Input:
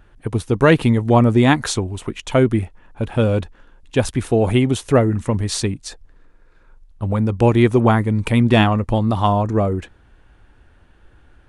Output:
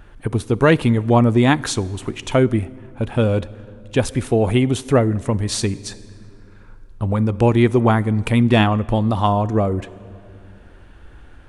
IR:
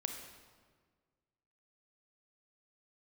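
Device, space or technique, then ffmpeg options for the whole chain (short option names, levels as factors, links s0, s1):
ducked reverb: -filter_complex "[0:a]asplit=3[s0][s1][s2];[1:a]atrim=start_sample=2205[s3];[s1][s3]afir=irnorm=-1:irlink=0[s4];[s2]apad=whole_len=506689[s5];[s4][s5]sidechaincompress=threshold=0.0316:ratio=10:attack=20:release=948,volume=1.68[s6];[s0][s6]amix=inputs=2:normalize=0,volume=0.794"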